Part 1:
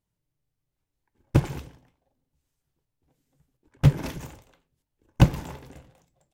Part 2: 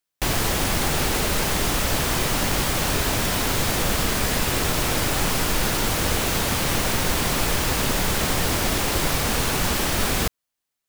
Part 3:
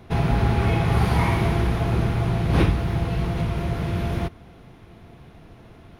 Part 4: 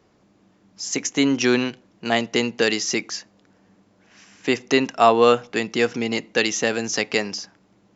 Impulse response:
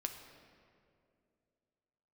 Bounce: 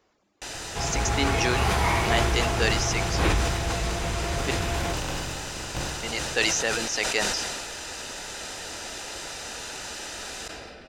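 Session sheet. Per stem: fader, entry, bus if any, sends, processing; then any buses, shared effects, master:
−2.0 dB, 0.55 s, no send, compressor on every frequency bin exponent 0.2; automatic ducking −15 dB, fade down 0.85 s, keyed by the fourth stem
−13.0 dB, 0.20 s, send −9 dB, low-pass with resonance 6,900 Hz, resonance Q 1.6; notch comb filter 1,100 Hz
−2.5 dB, 0.65 s, no send, automatic gain control gain up to 5 dB
−3.5 dB, 0.00 s, muted 0:04.51–0:06.03, no send, reverb reduction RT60 0.97 s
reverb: on, RT60 2.5 s, pre-delay 6 ms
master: parametric band 150 Hz −13 dB 2.2 octaves; level that may fall only so fast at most 27 dB per second

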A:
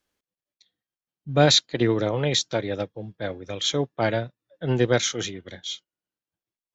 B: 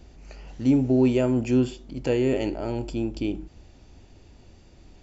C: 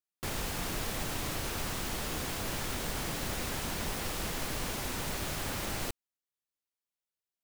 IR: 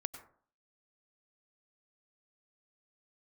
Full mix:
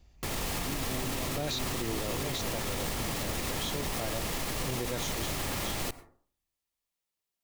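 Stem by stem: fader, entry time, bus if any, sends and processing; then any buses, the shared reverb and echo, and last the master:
−9.0 dB, 0.00 s, no send, no echo send, no processing
−9.5 dB, 0.00 s, no send, echo send −4.5 dB, parametric band 340 Hz −9.5 dB 1.8 octaves
+2.0 dB, 0.00 s, send −6 dB, no echo send, no processing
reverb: on, RT60 0.50 s, pre-delay 87 ms
echo: repeating echo 379 ms, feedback 35%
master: notch filter 1,500 Hz, Q 9.5; brickwall limiter −23.5 dBFS, peak gain reduction 11 dB

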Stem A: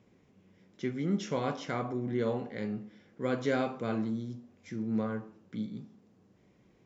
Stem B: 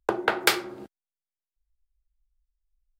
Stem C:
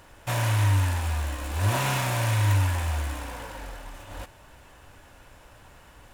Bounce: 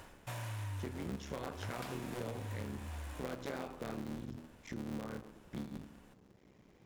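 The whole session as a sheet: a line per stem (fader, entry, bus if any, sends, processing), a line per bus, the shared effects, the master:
+2.5 dB, 0.00 s, no send, sub-harmonics by changed cycles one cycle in 3, muted
−18.5 dB, 1.35 s, no send, no processing
−0.5 dB, 0.00 s, no send, automatic ducking −12 dB, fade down 0.20 s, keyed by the first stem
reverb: not used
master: downward compressor 4 to 1, threshold −40 dBFS, peak gain reduction 14.5 dB

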